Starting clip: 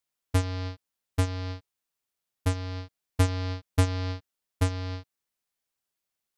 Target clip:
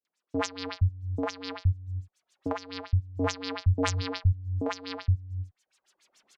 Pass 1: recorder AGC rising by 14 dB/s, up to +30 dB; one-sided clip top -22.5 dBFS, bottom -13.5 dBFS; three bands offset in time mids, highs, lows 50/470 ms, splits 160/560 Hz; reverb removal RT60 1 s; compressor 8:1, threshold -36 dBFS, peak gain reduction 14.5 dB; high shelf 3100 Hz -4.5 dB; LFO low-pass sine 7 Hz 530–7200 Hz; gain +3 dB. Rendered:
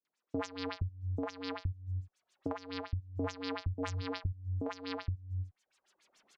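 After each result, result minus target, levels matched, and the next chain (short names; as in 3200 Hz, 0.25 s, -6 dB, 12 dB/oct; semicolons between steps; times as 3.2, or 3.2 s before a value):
compressor: peak gain reduction +14.5 dB; 8000 Hz band -6.0 dB
recorder AGC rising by 14 dB/s, up to +30 dB; one-sided clip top -22.5 dBFS, bottom -13.5 dBFS; three bands offset in time mids, highs, lows 50/470 ms, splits 160/560 Hz; reverb removal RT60 1 s; high shelf 3100 Hz -4.5 dB; LFO low-pass sine 7 Hz 530–7200 Hz; gain +3 dB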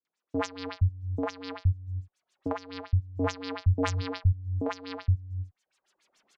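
8000 Hz band -6.0 dB
recorder AGC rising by 14 dB/s, up to +30 dB; one-sided clip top -22.5 dBFS, bottom -13.5 dBFS; three bands offset in time mids, highs, lows 50/470 ms, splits 160/560 Hz; reverb removal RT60 1 s; high shelf 3100 Hz +3 dB; LFO low-pass sine 7 Hz 530–7200 Hz; gain +3 dB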